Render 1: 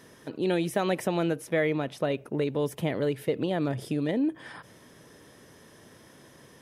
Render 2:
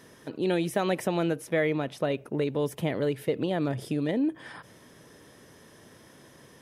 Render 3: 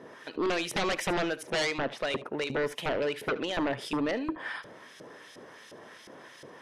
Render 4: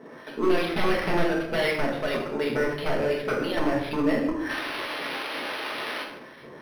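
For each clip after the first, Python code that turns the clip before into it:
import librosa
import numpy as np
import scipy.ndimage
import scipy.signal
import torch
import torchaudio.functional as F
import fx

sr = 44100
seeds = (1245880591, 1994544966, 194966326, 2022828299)

y1 = x
y2 = fx.filter_lfo_bandpass(y1, sr, shape='saw_up', hz=2.8, low_hz=430.0, high_hz=4400.0, q=0.83)
y2 = fx.fold_sine(y2, sr, drive_db=14, ceiling_db=-16.0)
y2 = y2 + 10.0 ** (-17.0 / 20.0) * np.pad(y2, (int(73 * sr / 1000.0), 0))[:len(y2)]
y2 = F.gain(torch.from_numpy(y2), -8.5).numpy()
y3 = fx.spec_paint(y2, sr, seeds[0], shape='noise', start_s=4.49, length_s=1.54, low_hz=240.0, high_hz=6900.0, level_db=-35.0)
y3 = fx.room_shoebox(y3, sr, seeds[1], volume_m3=240.0, walls='mixed', distance_m=1.5)
y3 = np.interp(np.arange(len(y3)), np.arange(len(y3))[::6], y3[::6])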